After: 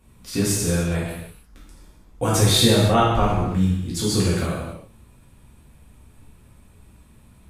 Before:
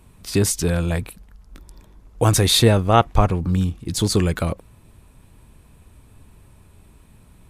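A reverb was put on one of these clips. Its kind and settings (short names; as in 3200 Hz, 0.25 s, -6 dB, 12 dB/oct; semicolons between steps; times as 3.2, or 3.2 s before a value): non-linear reverb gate 0.36 s falling, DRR -7 dB; gain -8.5 dB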